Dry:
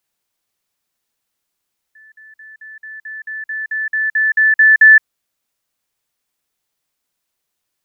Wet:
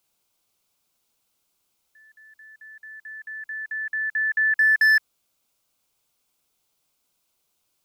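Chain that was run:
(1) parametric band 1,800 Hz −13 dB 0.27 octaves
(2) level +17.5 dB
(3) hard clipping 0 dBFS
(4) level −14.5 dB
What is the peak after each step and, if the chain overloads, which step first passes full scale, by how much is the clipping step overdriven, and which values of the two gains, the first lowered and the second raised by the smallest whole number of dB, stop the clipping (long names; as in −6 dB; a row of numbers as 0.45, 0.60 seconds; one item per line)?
−12.5, +5.0, 0.0, −14.5 dBFS
step 2, 5.0 dB
step 2 +12.5 dB, step 4 −9.5 dB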